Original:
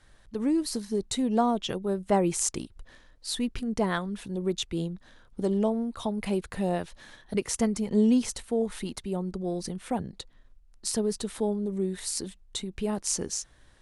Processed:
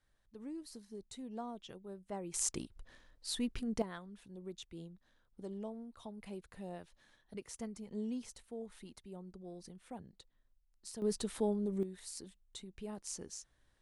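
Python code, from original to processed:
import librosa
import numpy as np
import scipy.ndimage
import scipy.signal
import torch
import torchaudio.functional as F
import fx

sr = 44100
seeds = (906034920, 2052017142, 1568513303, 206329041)

y = fx.gain(x, sr, db=fx.steps((0.0, -19.5), (2.34, -7.0), (3.82, -18.0), (11.02, -5.5), (11.83, -15.0)))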